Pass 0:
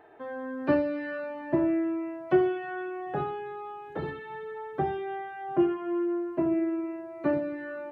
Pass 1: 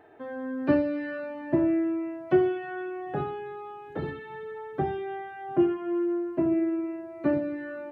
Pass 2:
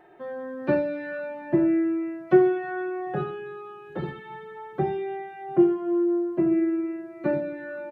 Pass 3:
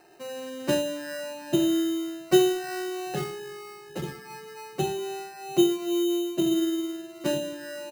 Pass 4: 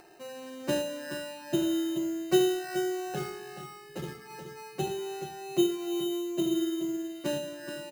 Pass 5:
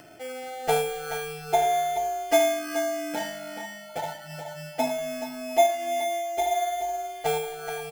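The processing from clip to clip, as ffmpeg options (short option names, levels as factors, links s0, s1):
-af "equalizer=f=100:t=o:w=0.67:g=6,equalizer=f=250:t=o:w=0.67:g=4,equalizer=f=1000:t=o:w=0.67:g=-3"
-af "aecho=1:1:5.5:0.69"
-af "acrusher=samples=13:mix=1:aa=0.000001,volume=0.794"
-filter_complex "[0:a]acompressor=mode=upward:threshold=0.00562:ratio=2.5,asplit=2[s0][s1];[s1]aecho=0:1:74|427:0.251|0.335[s2];[s0][s2]amix=inputs=2:normalize=0,volume=0.596"
-af "afftfilt=real='real(if(between(b,1,1008),(2*floor((b-1)/48)+1)*48-b,b),0)':imag='imag(if(between(b,1,1008),(2*floor((b-1)/48)+1)*48-b,b),0)*if(between(b,1,1008),-1,1)':win_size=2048:overlap=0.75,adynamicequalizer=threshold=0.01:dfrequency=720:dqfactor=0.82:tfrequency=720:tqfactor=0.82:attack=5:release=100:ratio=0.375:range=2:mode=cutabove:tftype=bell,volume=2"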